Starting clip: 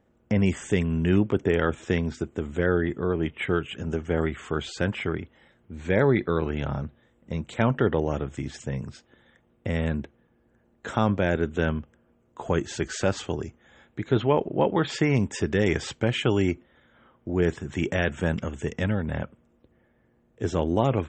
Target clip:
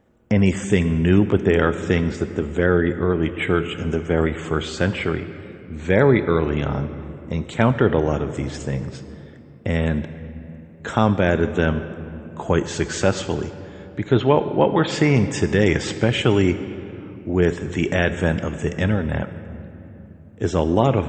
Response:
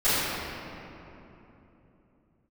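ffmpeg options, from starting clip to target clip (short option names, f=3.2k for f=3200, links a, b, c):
-filter_complex "[0:a]asplit=2[a][b];[1:a]atrim=start_sample=2205,highshelf=f=4.7k:g=9,adelay=17[c];[b][c]afir=irnorm=-1:irlink=0,volume=-29.5dB[d];[a][d]amix=inputs=2:normalize=0,volume=5.5dB"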